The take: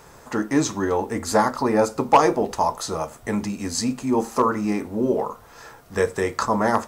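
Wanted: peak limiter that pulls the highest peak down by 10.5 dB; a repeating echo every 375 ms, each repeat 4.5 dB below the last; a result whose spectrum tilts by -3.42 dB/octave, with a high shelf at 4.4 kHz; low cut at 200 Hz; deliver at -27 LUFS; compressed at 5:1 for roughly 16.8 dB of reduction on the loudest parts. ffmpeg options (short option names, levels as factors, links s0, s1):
-af "highpass=200,highshelf=f=4400:g=6.5,acompressor=threshold=0.0355:ratio=5,alimiter=level_in=1.26:limit=0.0631:level=0:latency=1,volume=0.794,aecho=1:1:375|750|1125|1500|1875|2250|2625|3000|3375:0.596|0.357|0.214|0.129|0.0772|0.0463|0.0278|0.0167|0.01,volume=2.37"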